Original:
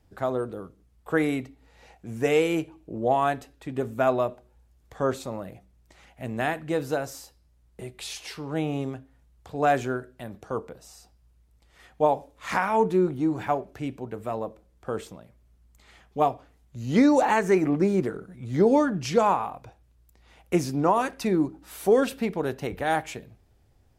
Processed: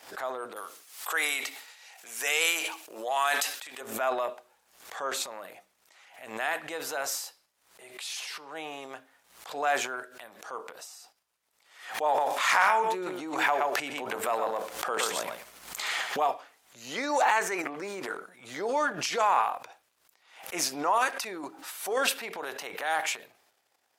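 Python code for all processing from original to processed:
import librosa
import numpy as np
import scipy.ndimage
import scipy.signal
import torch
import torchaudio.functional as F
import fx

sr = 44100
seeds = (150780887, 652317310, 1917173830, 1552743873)

y = fx.chain(x, sr, fx.highpass(hz=660.0, slope=6),
    fx.high_shelf(hz=2600.0, db=11.5),
    fx.sustainer(db_per_s=99.0), at=(0.56, 3.81))
y = fx.chain(y, sr, fx.echo_single(ms=119, db=-9.5),
    fx.env_flatten(amount_pct=70), at=(12.06, 16.28))
y = fx.transient(y, sr, attack_db=-3, sustain_db=10)
y = scipy.signal.sosfilt(scipy.signal.butter(2, 860.0, 'highpass', fs=sr, output='sos'), y)
y = fx.pre_swell(y, sr, db_per_s=100.0)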